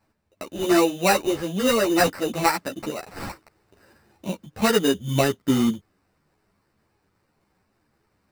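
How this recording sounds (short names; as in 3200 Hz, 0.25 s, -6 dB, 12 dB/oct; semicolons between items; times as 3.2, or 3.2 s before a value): aliases and images of a low sample rate 3300 Hz, jitter 0%; a shimmering, thickened sound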